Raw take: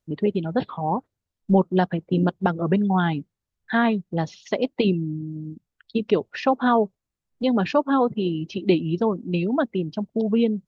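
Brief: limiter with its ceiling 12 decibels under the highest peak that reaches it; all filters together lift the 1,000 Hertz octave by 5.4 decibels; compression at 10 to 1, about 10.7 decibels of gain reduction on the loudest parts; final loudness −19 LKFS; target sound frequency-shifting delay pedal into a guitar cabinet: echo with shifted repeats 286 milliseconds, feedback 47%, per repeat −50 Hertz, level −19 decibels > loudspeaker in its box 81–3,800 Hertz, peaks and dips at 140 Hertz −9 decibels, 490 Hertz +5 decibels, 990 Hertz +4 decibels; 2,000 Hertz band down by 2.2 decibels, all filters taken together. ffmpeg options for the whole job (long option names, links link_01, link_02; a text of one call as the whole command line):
ffmpeg -i in.wav -filter_complex "[0:a]equalizer=frequency=1000:width_type=o:gain=5.5,equalizer=frequency=2000:width_type=o:gain=-6,acompressor=threshold=-23dB:ratio=10,alimiter=limit=-24dB:level=0:latency=1,asplit=5[link_01][link_02][link_03][link_04][link_05];[link_02]adelay=286,afreqshift=-50,volume=-19dB[link_06];[link_03]adelay=572,afreqshift=-100,volume=-25.6dB[link_07];[link_04]adelay=858,afreqshift=-150,volume=-32.1dB[link_08];[link_05]adelay=1144,afreqshift=-200,volume=-38.7dB[link_09];[link_01][link_06][link_07][link_08][link_09]amix=inputs=5:normalize=0,highpass=81,equalizer=frequency=140:width_type=q:width=4:gain=-9,equalizer=frequency=490:width_type=q:width=4:gain=5,equalizer=frequency=990:width_type=q:width=4:gain=4,lowpass=frequency=3800:width=0.5412,lowpass=frequency=3800:width=1.3066,volume=14dB" out.wav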